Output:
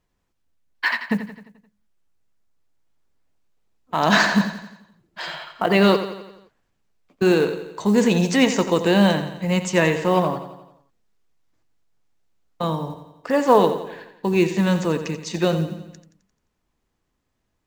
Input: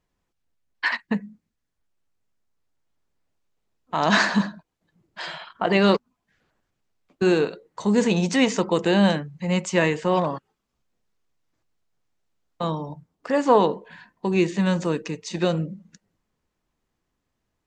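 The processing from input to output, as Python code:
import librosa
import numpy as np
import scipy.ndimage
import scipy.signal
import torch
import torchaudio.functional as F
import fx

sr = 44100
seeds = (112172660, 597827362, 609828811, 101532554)

p1 = fx.low_shelf(x, sr, hz=66.0, db=2.5)
p2 = fx.quant_float(p1, sr, bits=4)
p3 = p2 + fx.echo_feedback(p2, sr, ms=87, feedback_pct=54, wet_db=-11, dry=0)
y = p3 * 10.0 ** (2.0 / 20.0)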